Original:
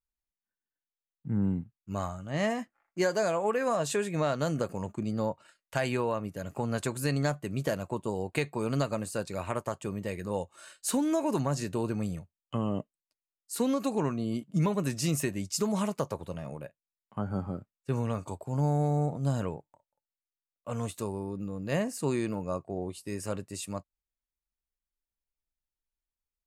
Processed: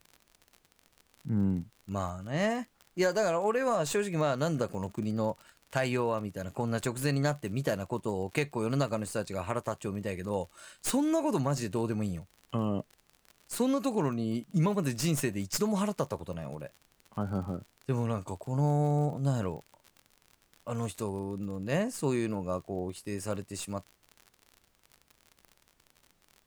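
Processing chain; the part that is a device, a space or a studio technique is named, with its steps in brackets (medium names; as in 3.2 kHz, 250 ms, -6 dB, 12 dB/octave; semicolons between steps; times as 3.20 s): record under a worn stylus (tracing distortion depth 0.04 ms; crackle 51 per s -40 dBFS; pink noise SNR 39 dB)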